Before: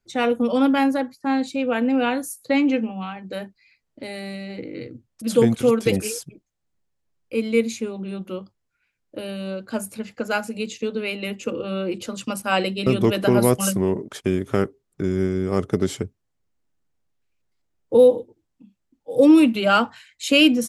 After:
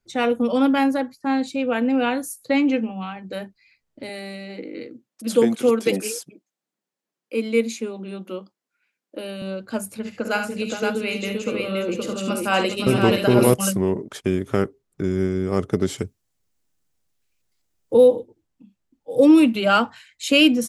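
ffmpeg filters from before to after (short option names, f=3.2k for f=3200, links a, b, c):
-filter_complex "[0:a]asettb=1/sr,asplit=3[a][b][c];[a]atrim=end=4.094[d];[b]atrim=start=4.09:end=9.42,asetpts=PTS-STARTPTS,afade=t=in:d=0.004:c=qsin,afade=t=out:st=5.326:d=0.004:c=qsin,highpass=f=200:w=0.5412,highpass=f=200:w=1.3066[e];[c]atrim=start=9.416[f];[d][e]acrossfade=d=0.004:c1=hsin:c2=qsin[g];[g][f]acrossfade=d=0.004:c1=qsin:c2=hsin,asettb=1/sr,asplit=3[h][i][j];[h]atrim=end=9.984[k];[i]atrim=start=9.98:end=13.54,asetpts=PTS-STARTPTS,afade=t=in:d=0.004:c=qsin,afade=t=out:st=3.556:d=0.004:c=qsin,aecho=1:1:49|71|411|520:0.316|0.376|0.251|0.668,atrim=end_sample=156996[l];[j]atrim=start=13.536[m];[k][l]acrossfade=d=0.004:c1=hsin:c2=qsin[n];[n][m]acrossfade=d=0.004:c1=qsin:c2=hsin,asettb=1/sr,asplit=3[o][p][q];[o]atrim=end=15.984[r];[p]atrim=start=15.98:end=17.94,asetpts=PTS-STARTPTS,afade=t=in:d=0.004:c=qsin,afade=t=out:st=1.956:d=0.004:c=qsin,highshelf=f=3.4k:g=11.5[s];[q]atrim=start=17.936[t];[r][s]acrossfade=d=0.004:c1=hsin:c2=qsin[u];[u][t]acrossfade=d=0.004:c1=qsin:c2=hsin"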